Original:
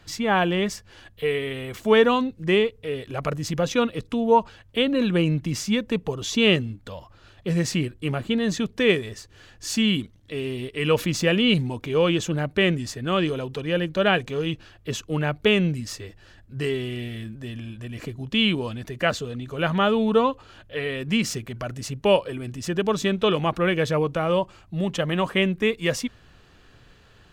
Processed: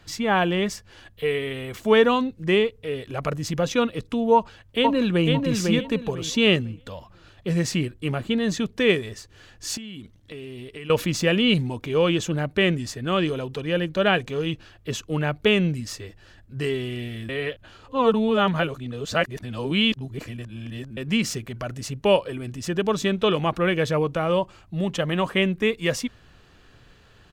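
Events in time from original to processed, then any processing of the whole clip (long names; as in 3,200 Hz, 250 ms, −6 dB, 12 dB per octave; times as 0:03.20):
0:04.34–0:05.29: delay throw 500 ms, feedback 25%, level −3.5 dB
0:09.77–0:10.90: downward compressor 12 to 1, threshold −33 dBFS
0:17.29–0:20.97: reverse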